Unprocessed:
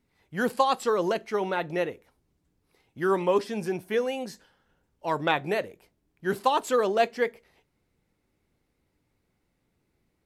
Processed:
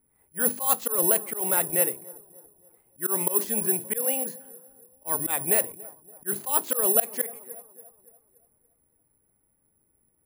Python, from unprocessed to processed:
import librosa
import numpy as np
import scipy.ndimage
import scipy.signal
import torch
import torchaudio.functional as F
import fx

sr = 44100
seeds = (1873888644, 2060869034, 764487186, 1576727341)

p1 = fx.hum_notches(x, sr, base_hz=50, count=7)
p2 = p1 + fx.echo_wet_lowpass(p1, sr, ms=285, feedback_pct=44, hz=1100.0, wet_db=-20.5, dry=0)
p3 = fx.env_lowpass(p2, sr, base_hz=1500.0, full_db=-21.0)
p4 = fx.auto_swell(p3, sr, attack_ms=147.0)
p5 = (np.kron(scipy.signal.resample_poly(p4, 1, 4), np.eye(4)[0]) * 4)[:len(p4)]
y = F.gain(torch.from_numpy(p5), -1.0).numpy()